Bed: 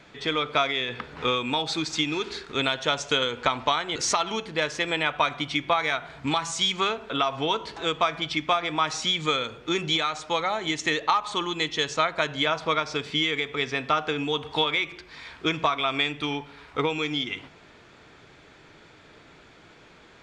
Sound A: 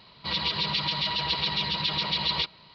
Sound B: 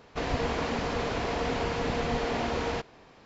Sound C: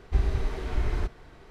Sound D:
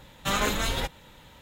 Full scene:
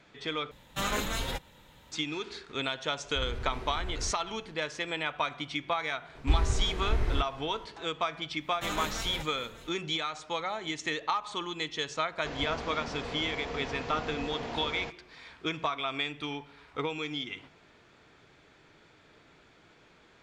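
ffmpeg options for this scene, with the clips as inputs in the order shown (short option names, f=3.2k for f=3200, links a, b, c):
-filter_complex "[4:a]asplit=2[a][b];[3:a]asplit=2[c][d];[0:a]volume=-7.5dB[e];[c]alimiter=limit=-22.5dB:level=0:latency=1:release=30[f];[b]aecho=1:1:595:0.158[g];[e]asplit=2[h][i];[h]atrim=end=0.514[j];[a]atrim=end=1.41,asetpts=PTS-STARTPTS,volume=-5dB[k];[i]atrim=start=1.916[l];[f]atrim=end=1.5,asetpts=PTS-STARTPTS,volume=-6.5dB,afade=t=in:d=0.004:c=hsin,afade=t=out:st=1.496:d=0.004:c=hsin,adelay=3040[m];[d]atrim=end=1.5,asetpts=PTS-STARTPTS,volume=-1dB,afade=t=in:d=0.004:c=hsin,afade=t=out:st=1.496:d=0.004:c=hsin,adelay=6150[n];[g]atrim=end=1.41,asetpts=PTS-STARTPTS,volume=-9dB,afade=t=in:d=0.1,afade=t=out:st=1.31:d=0.1,adelay=8360[o];[2:a]atrim=end=3.25,asetpts=PTS-STARTPTS,volume=-8.5dB,afade=t=in:d=0.004:c=hsin,afade=t=out:st=3.246:d=0.004:c=hsin,adelay=12090[p];[j][k]acrossfade=d=0.004:c1=hsin:c2=hsin[q];[q][l]acrossfade=d=0.004:c1=hsin:c2=hsin[r];[r][m][n][o][p]amix=inputs=5:normalize=0"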